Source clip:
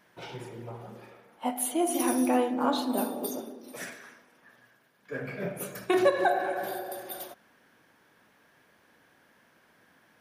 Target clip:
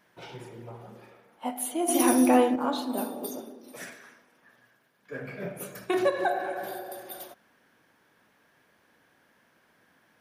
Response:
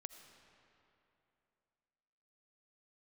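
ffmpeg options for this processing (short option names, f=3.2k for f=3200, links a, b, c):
-filter_complex "[0:a]asettb=1/sr,asplit=3[a][b][c];[a]atrim=end=1.884[d];[b]atrim=start=1.88:end=2.56,asetpts=PTS-STARTPTS,afade=t=in:d=0.004:c=qsin,afade=t=out:st=0.676:d=0.004:c=qsin,acontrast=87[e];[c]atrim=start=2.556[f];[d][e]acrossfade=d=0.004:c1=hsin:c2=qsin[g];[g][f]acrossfade=d=0.004:c1=qsin:c2=hsin,volume=-2dB"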